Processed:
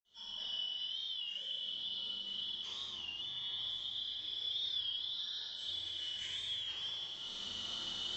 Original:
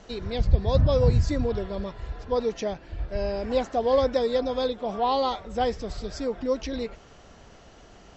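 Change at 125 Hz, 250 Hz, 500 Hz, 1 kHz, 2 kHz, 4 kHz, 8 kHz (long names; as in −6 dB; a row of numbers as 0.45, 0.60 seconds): −36.5 dB, −31.5 dB, below −35 dB, −30.0 dB, −11.0 dB, +5.5 dB, can't be measured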